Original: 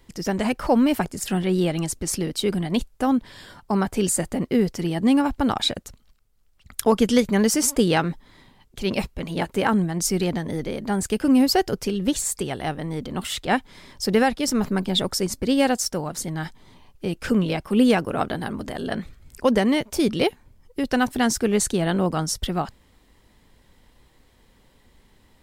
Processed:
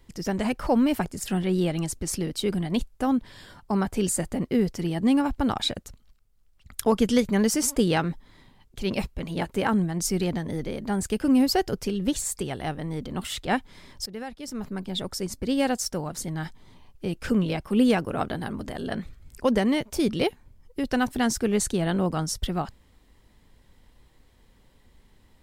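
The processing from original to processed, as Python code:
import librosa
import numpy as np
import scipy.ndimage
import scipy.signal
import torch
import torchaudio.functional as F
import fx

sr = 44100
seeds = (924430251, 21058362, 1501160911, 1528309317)

y = fx.edit(x, sr, fx.fade_in_from(start_s=14.06, length_s=1.83, floor_db=-18.0), tone=tone)
y = fx.low_shelf(y, sr, hz=140.0, db=5.0)
y = F.gain(torch.from_numpy(y), -4.0).numpy()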